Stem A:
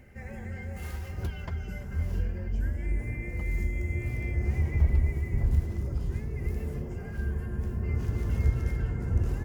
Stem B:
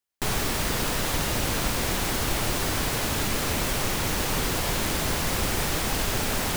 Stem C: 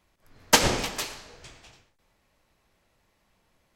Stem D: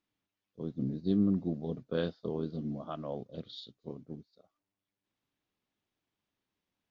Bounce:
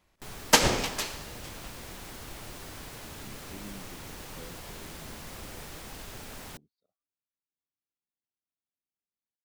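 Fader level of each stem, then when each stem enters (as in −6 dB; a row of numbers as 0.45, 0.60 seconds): muted, −17.0 dB, −1.0 dB, −18.5 dB; muted, 0.00 s, 0.00 s, 2.45 s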